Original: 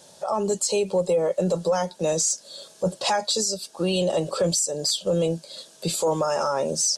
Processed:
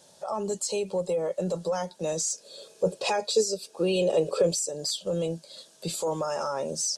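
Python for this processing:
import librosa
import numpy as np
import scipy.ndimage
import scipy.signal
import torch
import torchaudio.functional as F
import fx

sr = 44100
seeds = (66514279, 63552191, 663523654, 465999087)

y = fx.small_body(x, sr, hz=(440.0, 2500.0), ring_ms=30, db=13, at=(2.34, 4.69))
y = F.gain(torch.from_numpy(y), -6.0).numpy()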